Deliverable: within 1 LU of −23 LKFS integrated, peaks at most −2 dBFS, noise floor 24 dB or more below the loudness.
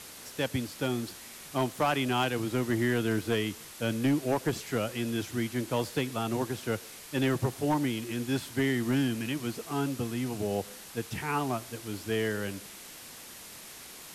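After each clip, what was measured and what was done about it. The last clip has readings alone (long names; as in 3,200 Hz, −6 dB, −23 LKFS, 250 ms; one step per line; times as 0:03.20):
share of clipped samples 0.6%; peaks flattened at −20.5 dBFS; background noise floor −47 dBFS; target noise floor −55 dBFS; integrated loudness −31.0 LKFS; sample peak −20.5 dBFS; target loudness −23.0 LKFS
→ clipped peaks rebuilt −20.5 dBFS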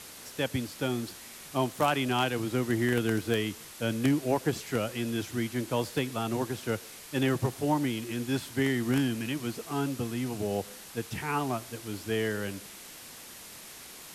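share of clipped samples 0.0%; background noise floor −47 dBFS; target noise floor −55 dBFS
→ noise reduction from a noise print 8 dB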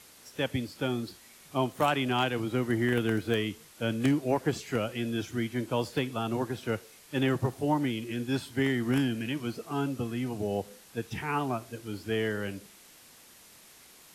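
background noise floor −55 dBFS; integrated loudness −31.0 LKFS; sample peak −12.0 dBFS; target loudness −23.0 LKFS
→ level +8 dB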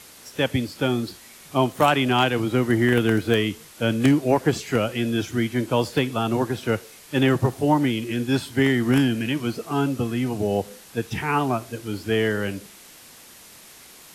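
integrated loudness −23.0 LKFS; sample peak −4.0 dBFS; background noise floor −47 dBFS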